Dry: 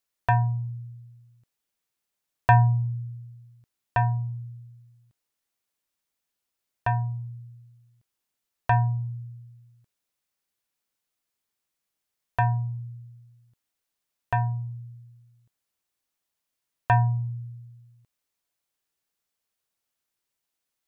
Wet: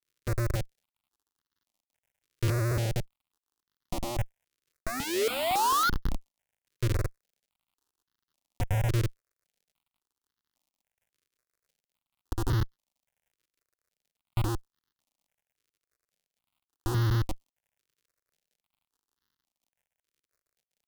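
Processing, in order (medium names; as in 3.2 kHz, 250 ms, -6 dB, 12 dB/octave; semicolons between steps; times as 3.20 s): granulator 100 ms, grains 20 per s, spray 100 ms, pitch spread up and down by 0 st; tone controls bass +11 dB, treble +4 dB; comb 3.6 ms, depth 94%; painted sound rise, 4.86–5.90 s, 210–1500 Hz -19 dBFS; multi-head delay 145 ms, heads second and third, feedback 49%, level -16 dB; algorithmic reverb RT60 2.3 s, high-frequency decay 0.45×, pre-delay 90 ms, DRR 19.5 dB; Schmitt trigger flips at -22 dBFS; vibrato 1.5 Hz 10 cents; crackle 91 per s -61 dBFS; stepped phaser 3.6 Hz 210–2400 Hz; trim +3 dB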